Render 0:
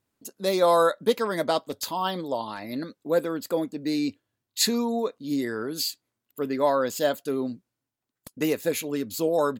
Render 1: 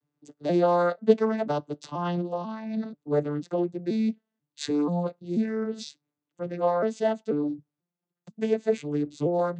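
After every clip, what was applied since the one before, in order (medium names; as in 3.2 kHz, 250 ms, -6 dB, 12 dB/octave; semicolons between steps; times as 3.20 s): vocoder on a broken chord minor triad, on D3, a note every 487 ms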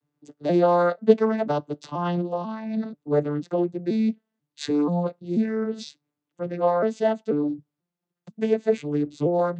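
treble shelf 6.8 kHz -8.5 dB; trim +3 dB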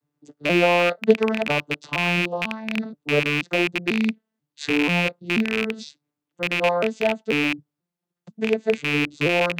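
rattle on loud lows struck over -33 dBFS, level -11 dBFS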